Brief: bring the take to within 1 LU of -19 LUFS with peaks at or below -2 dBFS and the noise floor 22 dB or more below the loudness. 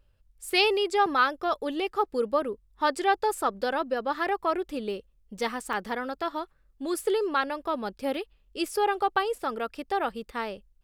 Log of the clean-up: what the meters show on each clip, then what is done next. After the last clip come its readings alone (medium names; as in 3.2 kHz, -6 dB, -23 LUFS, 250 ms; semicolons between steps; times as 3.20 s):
dropouts 2; longest dropout 3.0 ms; loudness -28.5 LUFS; peak level -10.5 dBFS; loudness target -19.0 LUFS
-> interpolate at 1.06/5.73 s, 3 ms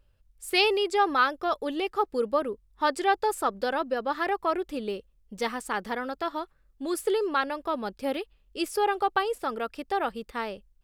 dropouts 0; loudness -28.5 LUFS; peak level -10.5 dBFS; loudness target -19.0 LUFS
-> trim +9.5 dB; peak limiter -2 dBFS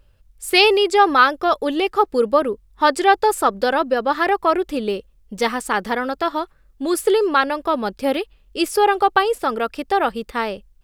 loudness -19.0 LUFS; peak level -2.0 dBFS; noise floor -55 dBFS